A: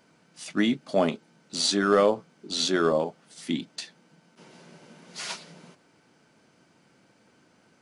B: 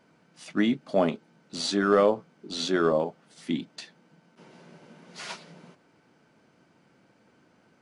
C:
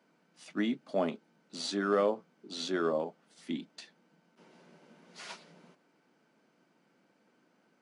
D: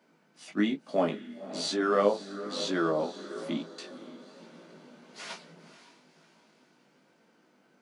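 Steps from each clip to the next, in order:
high-shelf EQ 3,900 Hz −9.5 dB
high-pass filter 170 Hz 24 dB per octave; level −7 dB
feedback delay with all-pass diffusion 529 ms, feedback 45%, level −14 dB; chorus effect 1.1 Hz, delay 17.5 ms, depth 3.3 ms; level +7 dB

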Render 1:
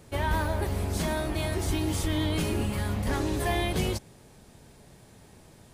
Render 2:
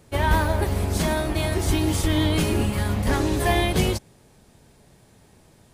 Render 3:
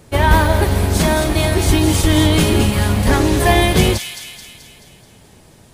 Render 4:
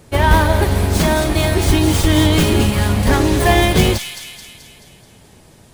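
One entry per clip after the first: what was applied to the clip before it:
expander for the loud parts 1.5 to 1, over −42 dBFS; level +8.5 dB
delay with a high-pass on its return 216 ms, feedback 54%, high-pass 2,300 Hz, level −6 dB; level +8 dB
stylus tracing distortion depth 0.053 ms

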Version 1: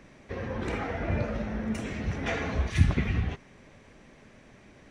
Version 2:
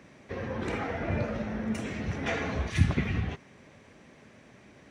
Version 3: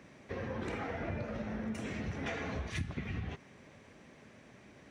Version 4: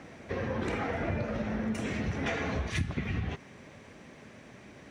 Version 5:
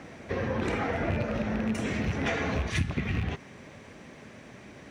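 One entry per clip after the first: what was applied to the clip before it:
high-pass filter 78 Hz
downward compressor 6 to 1, threshold −32 dBFS, peak gain reduction 15 dB; level −2.5 dB
backwards echo 816 ms −21.5 dB; level +6 dB
loose part that buzzes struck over −30 dBFS, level −31 dBFS; level +3 dB

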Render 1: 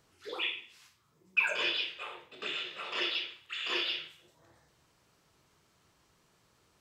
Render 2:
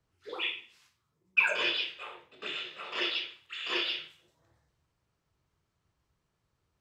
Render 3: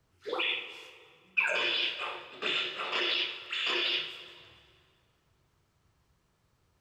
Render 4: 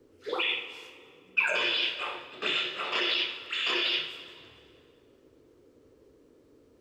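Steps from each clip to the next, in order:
high-shelf EQ 8,100 Hz −4 dB; multiband upward and downward expander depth 40%
in parallel at +2.5 dB: compressor whose output falls as the input rises −35 dBFS, ratio −0.5; on the sum: dense smooth reverb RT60 2.3 s, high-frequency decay 0.75×, DRR 10 dB; level −3.5 dB
noise in a band 250–510 Hz −62 dBFS; level +2 dB

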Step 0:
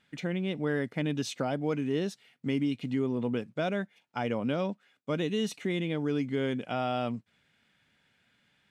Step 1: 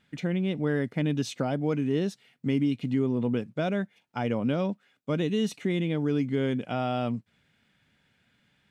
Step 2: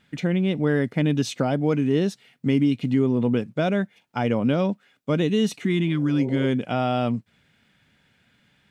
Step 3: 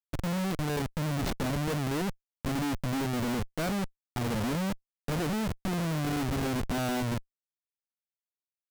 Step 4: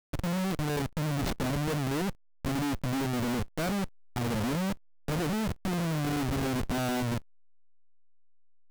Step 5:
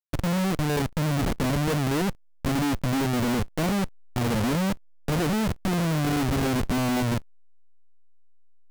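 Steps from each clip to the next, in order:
low-shelf EQ 300 Hz +6.5 dB
healed spectral selection 0:05.64–0:06.43, 370–950 Hz both; level +5.5 dB
comparator with hysteresis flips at −26 dBFS; level −6 dB
hold until the input has moved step −51 dBFS
running median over 41 samples; level +5.5 dB

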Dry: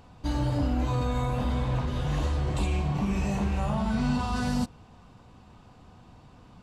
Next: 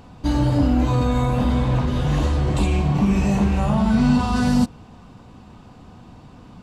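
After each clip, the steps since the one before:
parametric band 240 Hz +4.5 dB 1.4 octaves
level +6.5 dB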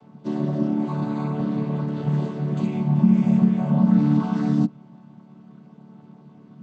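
channel vocoder with a chord as carrier major triad, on D3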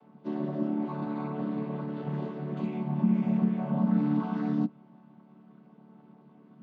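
band-pass filter 210–3,000 Hz
level −5 dB

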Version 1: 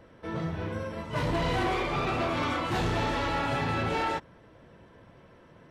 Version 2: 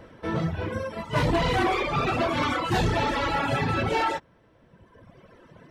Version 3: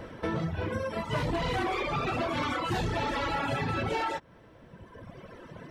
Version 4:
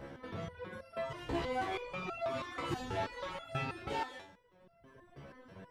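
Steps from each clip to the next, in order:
reverb reduction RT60 1.8 s; level +7 dB
downward compressor 5 to 1, threshold −34 dBFS, peak gain reduction 13 dB; level +5 dB
reverb whose tail is shaped and stops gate 230 ms falling, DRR 10 dB; step-sequenced resonator 6.2 Hz 69–680 Hz; level +2.5 dB

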